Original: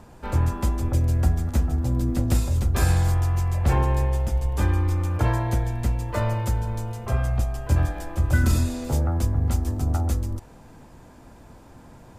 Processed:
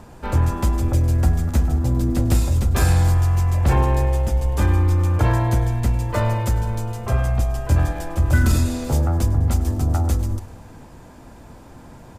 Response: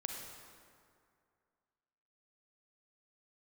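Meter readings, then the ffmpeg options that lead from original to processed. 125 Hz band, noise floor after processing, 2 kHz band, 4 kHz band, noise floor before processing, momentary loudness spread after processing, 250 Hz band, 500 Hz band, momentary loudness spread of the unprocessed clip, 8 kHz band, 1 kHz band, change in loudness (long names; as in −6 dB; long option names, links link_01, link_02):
+4.0 dB, −43 dBFS, +3.5 dB, +4.0 dB, −48 dBFS, 5 LU, +4.0 dB, +4.5 dB, 6 LU, +4.0 dB, +4.0 dB, +4.0 dB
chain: -filter_complex "[0:a]aecho=1:1:102|204|306|408|510:0.126|0.073|0.0424|0.0246|0.0142,asplit=2[link_01][link_02];[link_02]volume=21.5dB,asoftclip=hard,volume=-21.5dB,volume=-9dB[link_03];[link_01][link_03]amix=inputs=2:normalize=0,volume=2dB"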